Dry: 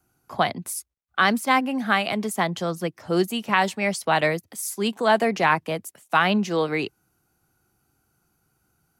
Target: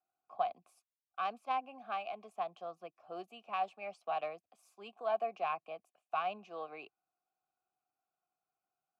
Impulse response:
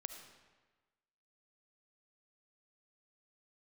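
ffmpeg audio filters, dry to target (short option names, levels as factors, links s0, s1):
-filter_complex "[0:a]aeval=exprs='0.631*(cos(1*acos(clip(val(0)/0.631,-1,1)))-cos(1*PI/2))+0.126*(cos(2*acos(clip(val(0)/0.631,-1,1)))-cos(2*PI/2))+0.0316*(cos(3*acos(clip(val(0)/0.631,-1,1)))-cos(3*PI/2))':c=same,asplit=3[s0][s1][s2];[s0]bandpass=f=730:t=q:w=8,volume=1[s3];[s1]bandpass=f=1090:t=q:w=8,volume=0.501[s4];[s2]bandpass=f=2440:t=q:w=8,volume=0.355[s5];[s3][s4][s5]amix=inputs=3:normalize=0,volume=0.473"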